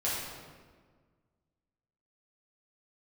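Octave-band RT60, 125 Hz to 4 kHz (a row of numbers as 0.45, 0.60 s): 2.1, 2.0, 1.7, 1.5, 1.3, 1.0 s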